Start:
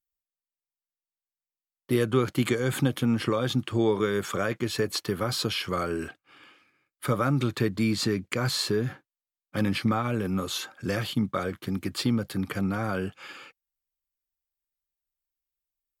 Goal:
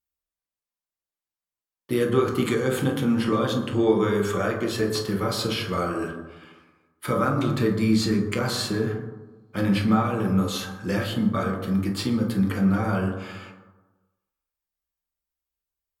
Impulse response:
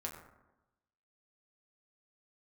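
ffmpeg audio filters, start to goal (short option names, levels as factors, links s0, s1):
-filter_complex "[1:a]atrim=start_sample=2205,asetrate=36162,aresample=44100[s0];[0:a][s0]afir=irnorm=-1:irlink=0,volume=1.26"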